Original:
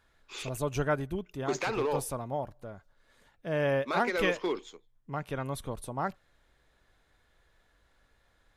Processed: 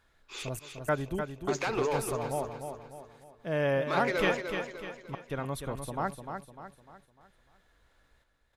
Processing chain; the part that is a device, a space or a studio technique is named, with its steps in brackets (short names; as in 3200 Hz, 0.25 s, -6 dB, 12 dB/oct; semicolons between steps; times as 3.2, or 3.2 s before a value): trance gate with a delay (step gate "xxxx..xxx.xxx" 102 bpm -24 dB; feedback echo 0.3 s, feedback 43%, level -7 dB)